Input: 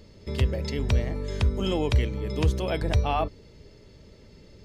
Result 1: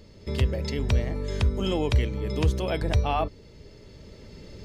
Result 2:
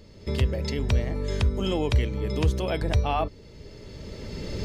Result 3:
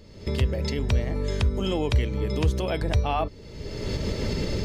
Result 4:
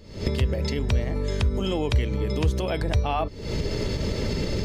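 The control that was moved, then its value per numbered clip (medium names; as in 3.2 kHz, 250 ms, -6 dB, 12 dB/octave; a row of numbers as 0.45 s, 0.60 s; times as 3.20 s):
recorder AGC, rising by: 5.3 dB/s, 14 dB/s, 35 dB/s, 86 dB/s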